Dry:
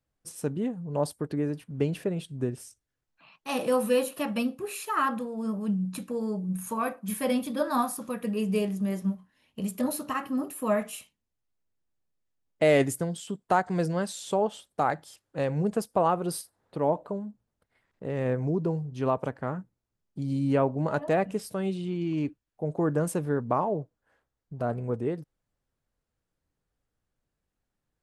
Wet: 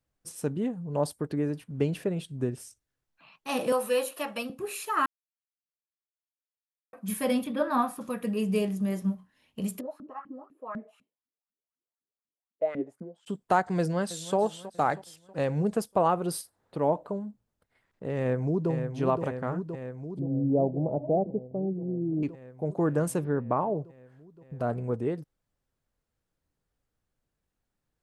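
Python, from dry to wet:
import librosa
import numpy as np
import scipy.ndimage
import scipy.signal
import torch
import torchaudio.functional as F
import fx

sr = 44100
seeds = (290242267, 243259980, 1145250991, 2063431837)

y = fx.highpass(x, sr, hz=440.0, slope=12, at=(3.72, 4.5))
y = fx.high_shelf_res(y, sr, hz=3800.0, db=-9.5, q=1.5, at=(7.44, 8.01))
y = fx.filter_lfo_bandpass(y, sr, shape='saw_up', hz=4.0, low_hz=200.0, high_hz=1500.0, q=5.5, at=(9.79, 13.26), fade=0.02)
y = fx.echo_throw(y, sr, start_s=13.78, length_s=0.59, ms=320, feedback_pct=50, wet_db=-15.5)
y = fx.echo_throw(y, sr, start_s=18.17, length_s=0.54, ms=520, feedback_pct=80, wet_db=-7.0)
y = fx.ellip_lowpass(y, sr, hz=740.0, order=4, stop_db=60, at=(20.19, 22.23))
y = fx.air_absorb(y, sr, metres=270.0, at=(23.23, 23.74), fade=0.02)
y = fx.edit(y, sr, fx.silence(start_s=5.06, length_s=1.87), tone=tone)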